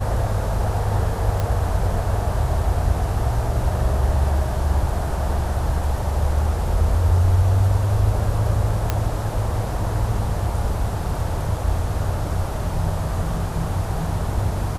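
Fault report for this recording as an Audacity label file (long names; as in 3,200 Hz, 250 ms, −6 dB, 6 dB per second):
1.400000	1.400000	click −11 dBFS
8.900000	8.900000	click −6 dBFS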